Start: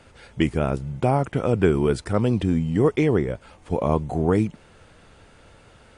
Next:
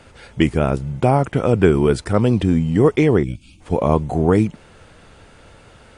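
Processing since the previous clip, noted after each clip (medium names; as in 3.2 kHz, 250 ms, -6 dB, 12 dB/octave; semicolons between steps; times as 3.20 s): time-frequency box 3.23–3.61 s, 360–2200 Hz -26 dB; trim +5 dB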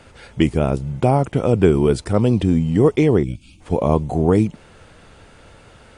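dynamic bell 1.6 kHz, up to -6 dB, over -37 dBFS, Q 1.3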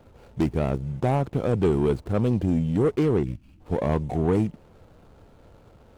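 median filter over 25 samples; saturation -9.5 dBFS, distortion -16 dB; trim -4.5 dB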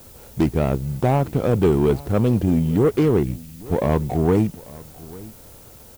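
added noise blue -52 dBFS; delay 844 ms -21 dB; trim +4.5 dB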